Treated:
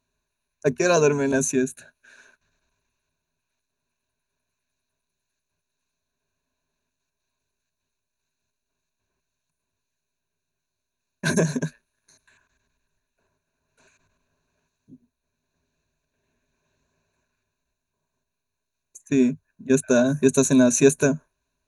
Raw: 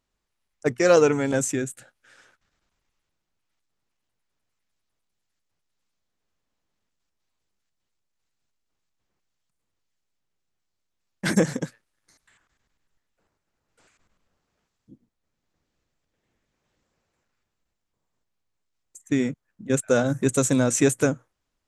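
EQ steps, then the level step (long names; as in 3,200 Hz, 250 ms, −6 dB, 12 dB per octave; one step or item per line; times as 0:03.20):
dynamic equaliser 1,900 Hz, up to −4 dB, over −38 dBFS, Q 1.4
EQ curve with evenly spaced ripples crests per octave 1.5, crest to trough 14 dB
0.0 dB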